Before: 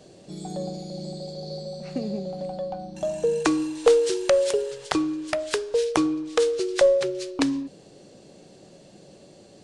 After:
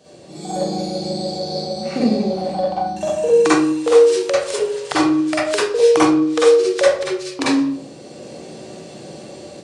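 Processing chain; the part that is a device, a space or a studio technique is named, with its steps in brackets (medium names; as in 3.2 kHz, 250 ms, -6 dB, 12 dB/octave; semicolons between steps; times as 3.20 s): far laptop microphone (reverberation RT60 0.50 s, pre-delay 41 ms, DRR -8.5 dB; high-pass 190 Hz 6 dB/octave; level rider gain up to 8 dB); trim -1 dB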